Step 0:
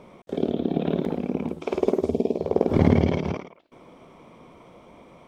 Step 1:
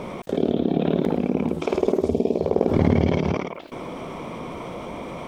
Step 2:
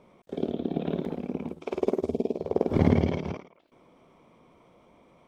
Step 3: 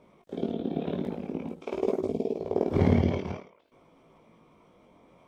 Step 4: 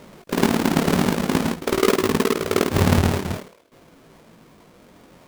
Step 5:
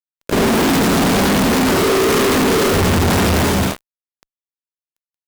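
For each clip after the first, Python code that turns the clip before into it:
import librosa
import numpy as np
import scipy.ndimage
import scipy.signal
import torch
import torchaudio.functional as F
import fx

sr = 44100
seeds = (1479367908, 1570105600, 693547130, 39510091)

y1 = fx.env_flatten(x, sr, amount_pct=50)
y1 = y1 * 10.0 ** (-1.5 / 20.0)
y2 = fx.upward_expand(y1, sr, threshold_db=-32.0, expansion=2.5)
y3 = fx.chorus_voices(y2, sr, voices=2, hz=0.48, base_ms=20, depth_ms=2.2, mix_pct=40)
y3 = y3 * 10.0 ** (2.0 / 20.0)
y4 = fx.halfwave_hold(y3, sr)
y4 = fx.rider(y4, sr, range_db=5, speed_s=0.5)
y4 = y4 * 10.0 ** (5.0 / 20.0)
y5 = fx.rev_gated(y4, sr, seeds[0], gate_ms=360, shape='rising', drr_db=0.0)
y5 = fx.fuzz(y5, sr, gain_db=38.0, gate_db=-36.0)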